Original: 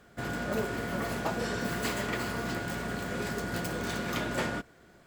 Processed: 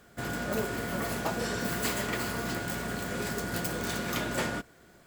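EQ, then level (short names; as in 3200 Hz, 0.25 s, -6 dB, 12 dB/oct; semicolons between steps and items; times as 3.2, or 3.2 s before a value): high shelf 6800 Hz +8.5 dB; 0.0 dB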